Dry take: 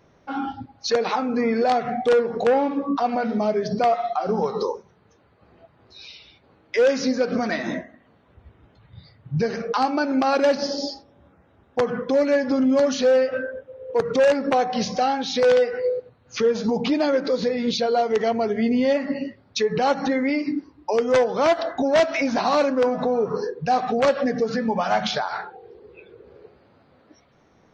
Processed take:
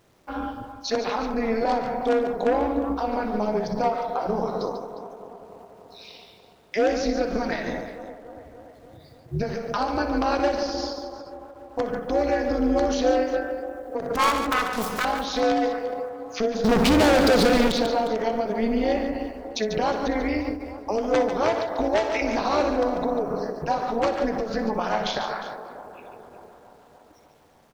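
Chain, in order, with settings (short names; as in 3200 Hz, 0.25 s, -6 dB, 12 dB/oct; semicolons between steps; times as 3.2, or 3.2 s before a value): 14.15–15.05 self-modulated delay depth 0.65 ms; bit-crush 10-bit; 16.64–17.72 sample leveller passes 5; band-limited delay 0.292 s, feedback 66%, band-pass 620 Hz, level -11.5 dB; AM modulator 220 Hz, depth 75%; tapped delay 47/61/143/356 ms -19/-12.5/-9/-15.5 dB; ending taper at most 120 dB/s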